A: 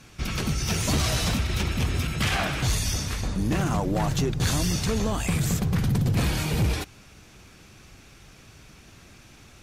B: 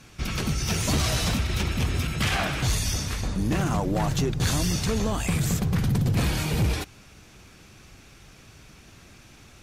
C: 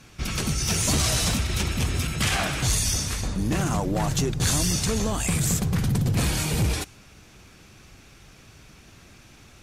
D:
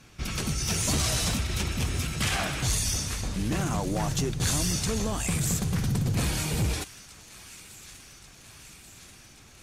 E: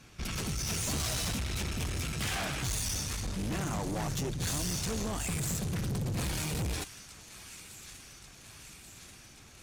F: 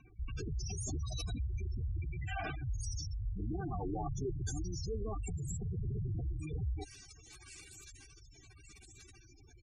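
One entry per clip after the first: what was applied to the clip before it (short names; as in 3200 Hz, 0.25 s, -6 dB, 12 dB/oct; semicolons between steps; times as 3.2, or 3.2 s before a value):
nothing audible
dynamic EQ 8600 Hz, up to +8 dB, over -47 dBFS, Q 0.82
thin delay 1.135 s, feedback 69%, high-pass 1400 Hz, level -16 dB; gain -3.5 dB
tube stage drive 30 dB, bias 0.45
comb 2.6 ms, depth 50%; spectral gate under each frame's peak -10 dB strong; gain -2.5 dB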